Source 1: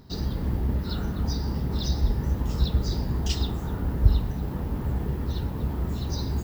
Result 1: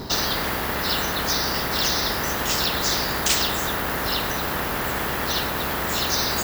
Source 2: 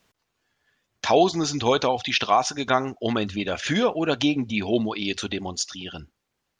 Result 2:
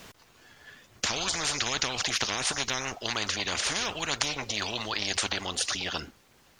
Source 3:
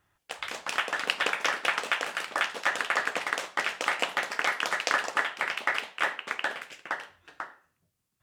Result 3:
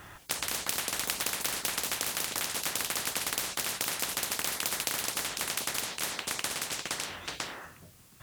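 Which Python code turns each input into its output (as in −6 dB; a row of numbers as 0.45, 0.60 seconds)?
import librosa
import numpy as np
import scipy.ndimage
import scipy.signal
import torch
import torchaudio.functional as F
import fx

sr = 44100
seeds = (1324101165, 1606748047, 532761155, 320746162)

y = fx.spectral_comp(x, sr, ratio=10.0)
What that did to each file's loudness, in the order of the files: +5.5, −5.0, −2.0 LU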